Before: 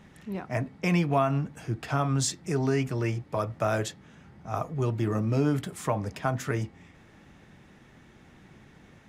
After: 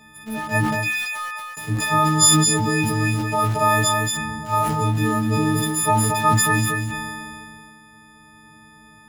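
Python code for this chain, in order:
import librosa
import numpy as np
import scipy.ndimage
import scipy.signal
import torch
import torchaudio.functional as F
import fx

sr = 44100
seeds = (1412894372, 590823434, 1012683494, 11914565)

p1 = fx.freq_snap(x, sr, grid_st=6)
p2 = fx.ladder_highpass(p1, sr, hz=1400.0, resonance_pct=35, at=(0.79, 1.57))
p3 = np.where(np.abs(p2) >= 10.0 ** (-34.5 / 20.0), p2, 0.0)
p4 = p2 + (p3 * librosa.db_to_amplitude(-4.0))
p5 = fx.doubler(p4, sr, ms=17.0, db=-5)
p6 = p5 + fx.echo_single(p5, sr, ms=232, db=-7.5, dry=0)
y = fx.sustainer(p6, sr, db_per_s=24.0)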